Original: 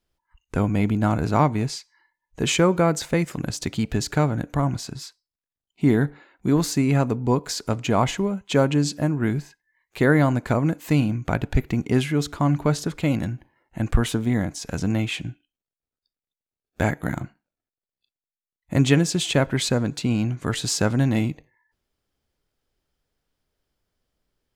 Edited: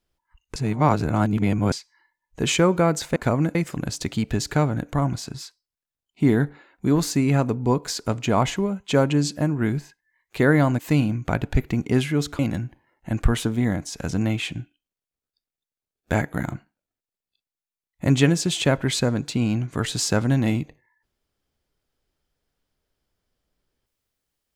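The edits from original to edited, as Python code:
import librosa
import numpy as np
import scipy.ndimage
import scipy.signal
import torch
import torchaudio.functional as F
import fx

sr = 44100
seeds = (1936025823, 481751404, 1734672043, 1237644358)

y = fx.edit(x, sr, fx.reverse_span(start_s=0.56, length_s=1.16),
    fx.move(start_s=10.4, length_s=0.39, to_s=3.16),
    fx.cut(start_s=12.39, length_s=0.69), tone=tone)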